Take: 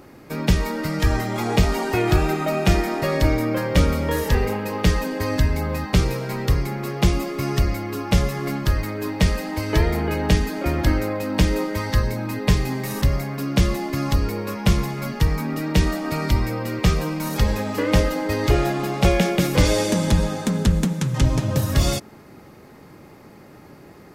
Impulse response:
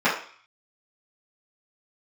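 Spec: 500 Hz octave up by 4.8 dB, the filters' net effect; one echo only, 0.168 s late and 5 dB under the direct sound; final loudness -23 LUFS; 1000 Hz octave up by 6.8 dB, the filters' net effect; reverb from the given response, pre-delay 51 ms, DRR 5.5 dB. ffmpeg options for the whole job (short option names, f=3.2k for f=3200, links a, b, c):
-filter_complex "[0:a]equalizer=f=500:t=o:g=4,equalizer=f=1k:t=o:g=7.5,aecho=1:1:168:0.562,asplit=2[a][b];[1:a]atrim=start_sample=2205,adelay=51[c];[b][c]afir=irnorm=-1:irlink=0,volume=-24.5dB[d];[a][d]amix=inputs=2:normalize=0,volume=-4.5dB"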